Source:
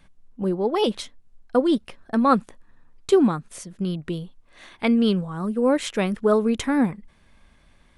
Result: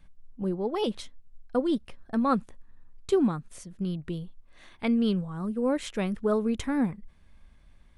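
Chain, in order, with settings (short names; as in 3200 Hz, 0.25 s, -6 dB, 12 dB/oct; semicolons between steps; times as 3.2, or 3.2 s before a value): low shelf 130 Hz +11 dB; gain -8 dB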